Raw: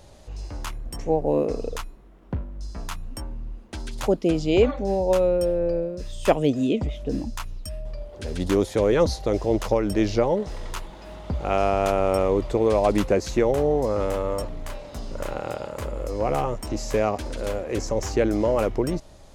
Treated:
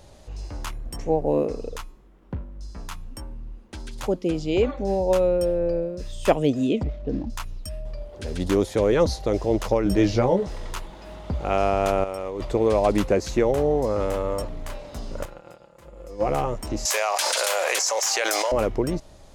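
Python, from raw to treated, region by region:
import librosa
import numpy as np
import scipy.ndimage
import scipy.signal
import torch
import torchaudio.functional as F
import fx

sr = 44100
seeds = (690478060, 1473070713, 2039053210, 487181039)

y = fx.chain(x, sr, fx.notch(hz=670.0, q=11.0),
    fx.comb_fb(f0_hz=180.0, decay_s=0.66, harmonics='all', damping=0.0, mix_pct=30), at=(1.48, 4.8))
y = fx.chain(y, sr, fx.median_filter(points=15),
    fx.air_absorb(metres=150.0), at=(6.83, 7.3))
y = fx.chain(y, sr, fx.low_shelf(hz=180.0, db=5.0),
    fx.doubler(ms=16.0, db=-4.5), at=(9.84, 10.47))
y = fx.chain(y, sr, fx.low_shelf(hz=380.0, db=-7.0),
    fx.over_compress(threshold_db=-30.0, ratio=-1.0), at=(12.04, 12.45))
y = fx.chain(y, sr, fx.comb(ms=5.8, depth=0.66),
    fx.upward_expand(threshold_db=-32.0, expansion=2.5), at=(15.25, 16.27))
y = fx.chain(y, sr, fx.highpass(hz=690.0, slope=24),
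    fx.high_shelf(hz=3000.0, db=11.5),
    fx.env_flatten(amount_pct=100), at=(16.85, 18.52))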